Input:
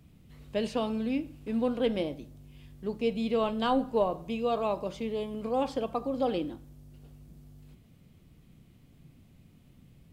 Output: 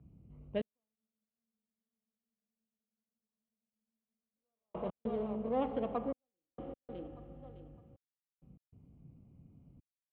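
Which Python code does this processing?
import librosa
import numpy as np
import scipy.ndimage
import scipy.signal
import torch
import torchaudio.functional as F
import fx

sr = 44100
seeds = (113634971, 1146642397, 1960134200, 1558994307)

y = fx.wiener(x, sr, points=25)
y = scipy.signal.sosfilt(scipy.signal.butter(6, 3300.0, 'lowpass', fs=sr, output='sos'), y)
y = fx.low_shelf(y, sr, hz=160.0, db=7.5)
y = fx.notch(y, sr, hz=2600.0, q=25.0)
y = fx.echo_feedback(y, sr, ms=609, feedback_pct=28, wet_db=-12.0)
y = fx.rev_spring(y, sr, rt60_s=2.6, pass_ms=(31, 37, 42), chirp_ms=65, drr_db=8.5)
y = fx.step_gate(y, sr, bpm=98, pattern='xxxx...x.xxx', floor_db=-60.0, edge_ms=4.5)
y = fx.highpass(y, sr, hz=77.0, slope=6)
y = fx.spec_freeze(y, sr, seeds[0], at_s=0.97, hold_s=3.39)
y = y * librosa.db_to_amplitude(-5.0)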